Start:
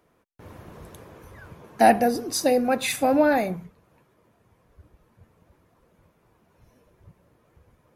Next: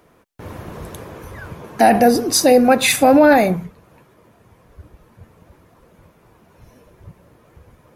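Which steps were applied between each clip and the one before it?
maximiser +13 dB; gain -2 dB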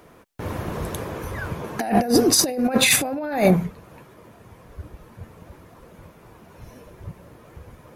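negative-ratio compressor -17 dBFS, ratio -0.5; gain -1 dB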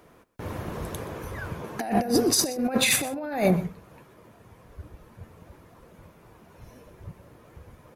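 echo 0.124 s -17.5 dB; gain -5 dB

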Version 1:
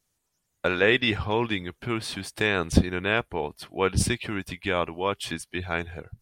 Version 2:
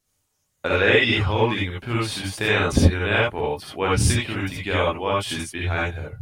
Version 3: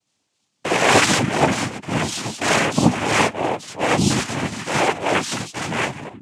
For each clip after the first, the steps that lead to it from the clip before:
non-linear reverb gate 0.1 s rising, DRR -4.5 dB; gain -1 dB
flange 0.84 Hz, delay 3 ms, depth 2.3 ms, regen +86%; noise vocoder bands 4; gain +7.5 dB

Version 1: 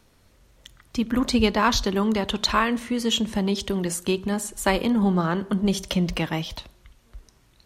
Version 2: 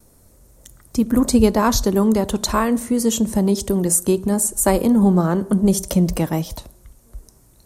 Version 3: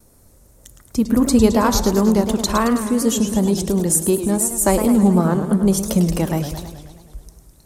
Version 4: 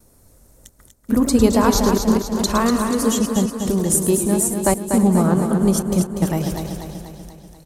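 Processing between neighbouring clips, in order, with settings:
gate with hold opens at -52 dBFS; EQ curve 590 Hz 0 dB, 3100 Hz -15 dB, 8800 Hz +8 dB; gain +6.5 dB
warbling echo 0.107 s, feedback 65%, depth 202 cents, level -9.5 dB
step gate "xxxxxxx.x..xx" 152 bpm -60 dB; feedback echo 0.243 s, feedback 56%, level -6.5 dB; gain -1 dB

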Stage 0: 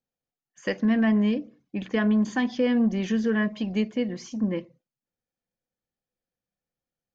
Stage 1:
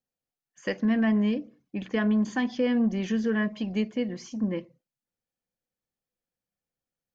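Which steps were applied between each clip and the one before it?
notch 3700 Hz, Q 29; gain -2 dB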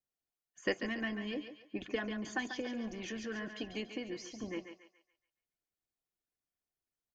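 harmonic-percussive split harmonic -13 dB; comb 2.8 ms, depth 31%; thinning echo 0.141 s, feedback 40%, high-pass 490 Hz, level -7 dB; gain -2 dB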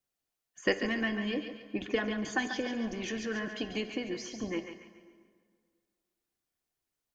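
plate-style reverb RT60 2 s, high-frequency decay 0.7×, DRR 11.5 dB; gain +5.5 dB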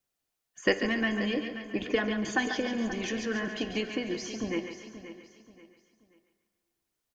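feedback echo 0.531 s, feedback 32%, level -12.5 dB; gain +3 dB

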